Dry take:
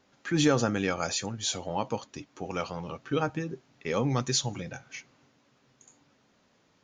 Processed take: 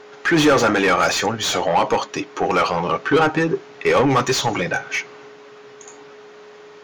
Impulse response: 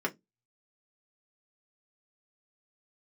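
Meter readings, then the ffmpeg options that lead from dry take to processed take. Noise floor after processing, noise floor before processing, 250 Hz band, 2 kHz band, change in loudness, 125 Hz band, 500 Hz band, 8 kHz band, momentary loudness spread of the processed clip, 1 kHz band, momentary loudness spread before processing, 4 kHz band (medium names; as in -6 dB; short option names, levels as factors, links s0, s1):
-43 dBFS, -67 dBFS, +9.5 dB, +16.5 dB, +11.5 dB, +5.5 dB, +13.0 dB, +6.0 dB, 8 LU, +16.0 dB, 15 LU, +10.0 dB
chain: -filter_complex "[0:a]asplit=2[s0][s1];[s1]highpass=f=720:p=1,volume=20,asoftclip=type=tanh:threshold=0.266[s2];[s0][s2]amix=inputs=2:normalize=0,lowpass=f=2000:p=1,volume=0.501,aeval=exprs='val(0)+0.00316*sin(2*PI*420*n/s)':c=same,asplit=2[s3][s4];[1:a]atrim=start_sample=2205[s5];[s4][s5]afir=irnorm=-1:irlink=0,volume=0.141[s6];[s3][s6]amix=inputs=2:normalize=0,volume=1.58"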